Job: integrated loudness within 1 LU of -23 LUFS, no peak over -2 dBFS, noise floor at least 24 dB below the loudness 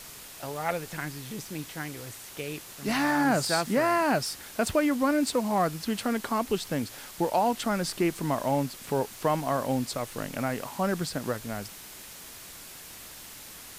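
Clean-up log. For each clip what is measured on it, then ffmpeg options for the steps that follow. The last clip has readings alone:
noise floor -45 dBFS; noise floor target -53 dBFS; loudness -29.0 LUFS; peak -12.5 dBFS; loudness target -23.0 LUFS
-> -af "afftdn=nr=8:nf=-45"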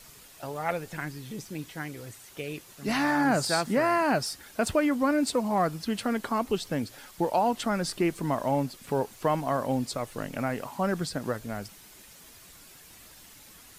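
noise floor -52 dBFS; noise floor target -53 dBFS
-> -af "afftdn=nr=6:nf=-52"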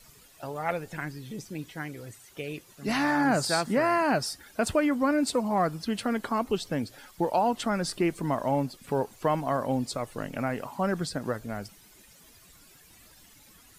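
noise floor -56 dBFS; loudness -29.0 LUFS; peak -12.5 dBFS; loudness target -23.0 LUFS
-> -af "volume=6dB"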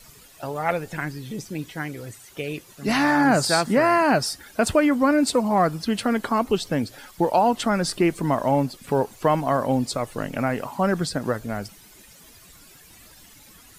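loudness -23.0 LUFS; peak -6.5 dBFS; noise floor -50 dBFS

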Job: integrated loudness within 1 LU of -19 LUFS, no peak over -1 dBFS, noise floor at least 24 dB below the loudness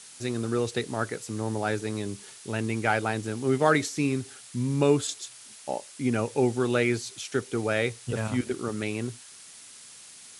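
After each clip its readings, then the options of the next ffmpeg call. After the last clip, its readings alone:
noise floor -48 dBFS; noise floor target -53 dBFS; loudness -28.5 LUFS; peak -7.5 dBFS; loudness target -19.0 LUFS
-> -af "afftdn=nr=6:nf=-48"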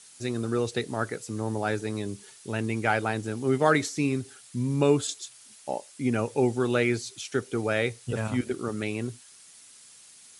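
noise floor -52 dBFS; noise floor target -53 dBFS
-> -af "afftdn=nr=6:nf=-52"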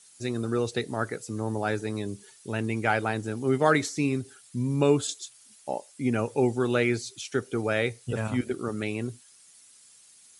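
noise floor -56 dBFS; loudness -28.5 LUFS; peak -8.0 dBFS; loudness target -19.0 LUFS
-> -af "volume=9.5dB,alimiter=limit=-1dB:level=0:latency=1"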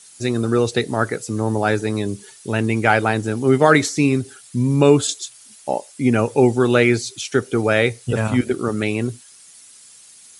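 loudness -19.0 LUFS; peak -1.0 dBFS; noise floor -46 dBFS

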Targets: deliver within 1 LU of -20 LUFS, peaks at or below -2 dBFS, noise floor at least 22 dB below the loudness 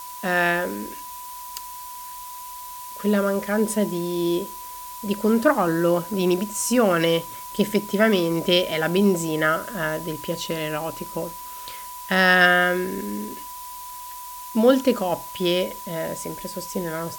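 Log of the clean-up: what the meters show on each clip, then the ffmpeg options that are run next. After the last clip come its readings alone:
steady tone 990 Hz; tone level -36 dBFS; noise floor -37 dBFS; noise floor target -45 dBFS; loudness -22.5 LUFS; peak -3.0 dBFS; loudness target -20.0 LUFS
-> -af "bandreject=f=990:w=30"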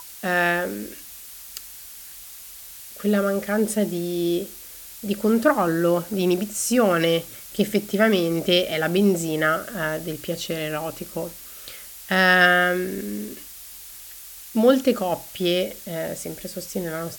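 steady tone none; noise floor -41 dBFS; noise floor target -45 dBFS
-> -af "afftdn=nr=6:nf=-41"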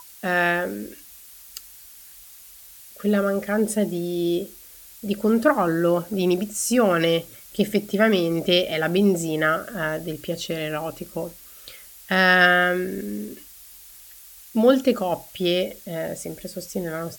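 noise floor -46 dBFS; loudness -22.5 LUFS; peak -3.0 dBFS; loudness target -20.0 LUFS
-> -af "volume=2.5dB,alimiter=limit=-2dB:level=0:latency=1"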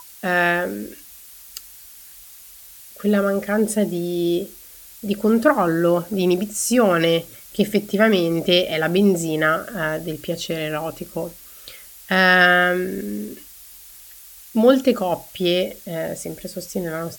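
loudness -20.0 LUFS; peak -2.0 dBFS; noise floor -43 dBFS

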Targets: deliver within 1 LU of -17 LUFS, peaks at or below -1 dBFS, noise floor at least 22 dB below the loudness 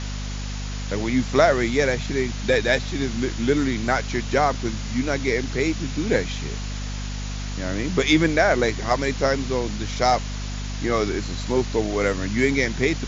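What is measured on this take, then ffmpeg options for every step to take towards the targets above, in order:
hum 50 Hz; harmonics up to 250 Hz; hum level -27 dBFS; noise floor -29 dBFS; noise floor target -45 dBFS; loudness -23.0 LUFS; peak -3.0 dBFS; loudness target -17.0 LUFS
-> -af "bandreject=f=50:t=h:w=4,bandreject=f=100:t=h:w=4,bandreject=f=150:t=h:w=4,bandreject=f=200:t=h:w=4,bandreject=f=250:t=h:w=4"
-af "afftdn=nr=16:nf=-29"
-af "volume=6dB,alimiter=limit=-1dB:level=0:latency=1"

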